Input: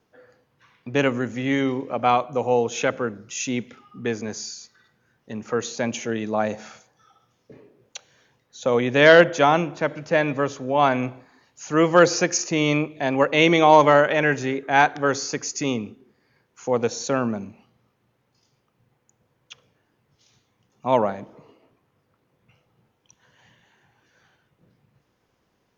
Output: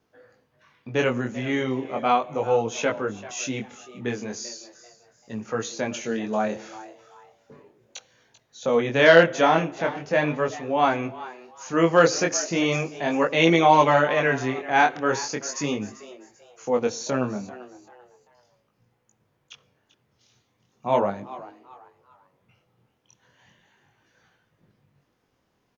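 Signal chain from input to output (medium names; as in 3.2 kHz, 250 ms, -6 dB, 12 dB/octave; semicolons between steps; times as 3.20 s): chorus 0.37 Hz, delay 18 ms, depth 6.6 ms; frequency-shifting echo 390 ms, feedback 32%, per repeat +120 Hz, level -17 dB; trim +1 dB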